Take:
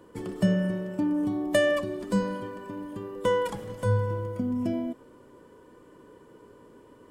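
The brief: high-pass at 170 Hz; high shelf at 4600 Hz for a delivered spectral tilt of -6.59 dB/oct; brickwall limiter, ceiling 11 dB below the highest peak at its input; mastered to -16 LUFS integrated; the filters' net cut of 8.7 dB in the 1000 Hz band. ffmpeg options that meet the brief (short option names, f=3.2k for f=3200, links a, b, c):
-af "highpass=170,equalizer=f=1k:t=o:g=-9,highshelf=f=4.6k:g=-8,volume=17.5dB,alimiter=limit=-6.5dB:level=0:latency=1"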